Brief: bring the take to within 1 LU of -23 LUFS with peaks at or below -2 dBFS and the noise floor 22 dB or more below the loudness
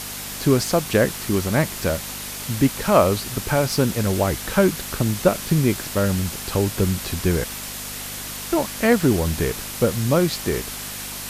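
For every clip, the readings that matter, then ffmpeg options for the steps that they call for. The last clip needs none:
hum 50 Hz; harmonics up to 250 Hz; hum level -41 dBFS; noise floor -32 dBFS; noise floor target -44 dBFS; loudness -21.5 LUFS; peak -2.0 dBFS; loudness target -23.0 LUFS
-> -af "bandreject=f=50:t=h:w=4,bandreject=f=100:t=h:w=4,bandreject=f=150:t=h:w=4,bandreject=f=200:t=h:w=4,bandreject=f=250:t=h:w=4"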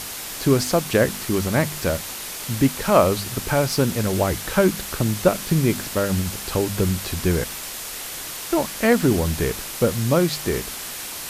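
hum none; noise floor -33 dBFS; noise floor target -44 dBFS
-> -af "afftdn=nr=11:nf=-33"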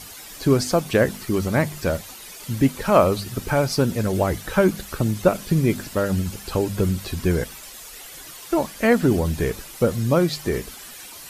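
noise floor -40 dBFS; noise floor target -44 dBFS
-> -af "afftdn=nr=6:nf=-40"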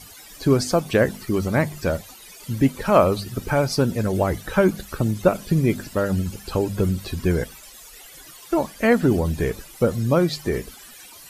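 noise floor -44 dBFS; loudness -22.0 LUFS; peak -2.5 dBFS; loudness target -23.0 LUFS
-> -af "volume=-1dB"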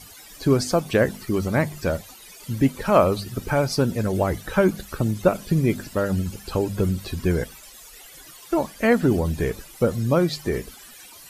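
loudness -23.0 LUFS; peak -3.5 dBFS; noise floor -45 dBFS

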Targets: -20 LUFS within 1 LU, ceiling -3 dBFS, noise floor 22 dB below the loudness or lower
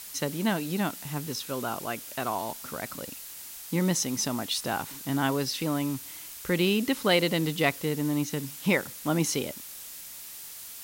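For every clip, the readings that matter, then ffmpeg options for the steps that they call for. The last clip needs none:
noise floor -43 dBFS; noise floor target -51 dBFS; loudness -29.0 LUFS; peak -10.0 dBFS; loudness target -20.0 LUFS
-> -af "afftdn=nr=8:nf=-43"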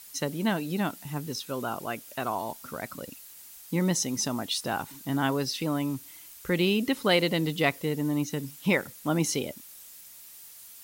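noise floor -49 dBFS; noise floor target -51 dBFS
-> -af "afftdn=nr=6:nf=-49"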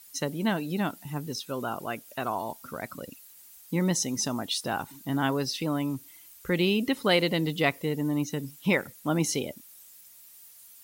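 noise floor -52 dBFS; loudness -29.0 LUFS; peak -10.0 dBFS; loudness target -20.0 LUFS
-> -af "volume=9dB,alimiter=limit=-3dB:level=0:latency=1"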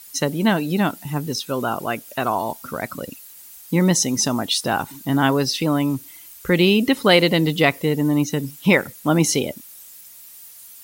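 loudness -20.0 LUFS; peak -3.0 dBFS; noise floor -43 dBFS

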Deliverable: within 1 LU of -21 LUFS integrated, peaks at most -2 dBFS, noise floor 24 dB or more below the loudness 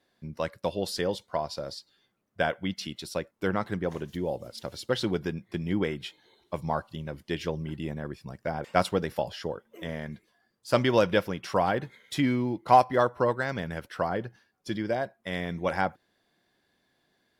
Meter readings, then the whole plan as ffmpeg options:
loudness -30.0 LUFS; peak -7.0 dBFS; loudness target -21.0 LUFS
-> -af "volume=9dB,alimiter=limit=-2dB:level=0:latency=1"

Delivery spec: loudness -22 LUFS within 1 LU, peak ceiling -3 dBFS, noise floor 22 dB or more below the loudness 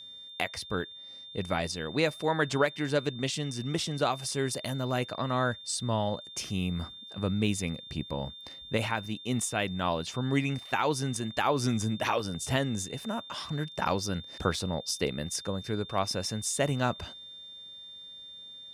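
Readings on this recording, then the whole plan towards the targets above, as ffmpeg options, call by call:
steady tone 3600 Hz; tone level -44 dBFS; loudness -31.0 LUFS; peak -13.5 dBFS; loudness target -22.0 LUFS
-> -af "bandreject=f=3.6k:w=30"
-af "volume=9dB"

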